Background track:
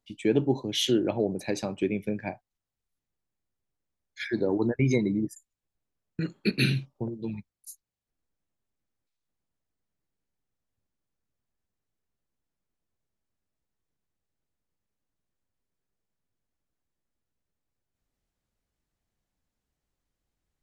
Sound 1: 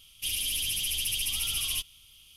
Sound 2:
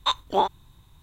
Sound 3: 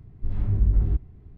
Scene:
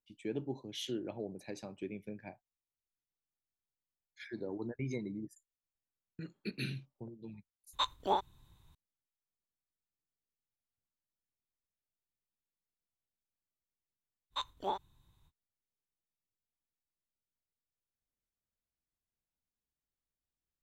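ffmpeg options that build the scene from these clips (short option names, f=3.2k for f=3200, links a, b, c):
-filter_complex "[2:a]asplit=2[a][b];[0:a]volume=-14.5dB[c];[a]atrim=end=1.02,asetpts=PTS-STARTPTS,volume=-9.5dB,afade=t=in:d=0.004:c=hsin,afade=t=out:st=1.016:d=0.004:c=hsin,adelay=7730[d];[b]atrim=end=1.02,asetpts=PTS-STARTPTS,volume=-14.5dB,afade=t=in:d=0.05,afade=t=out:st=0.97:d=0.05,adelay=14300[e];[c][d][e]amix=inputs=3:normalize=0"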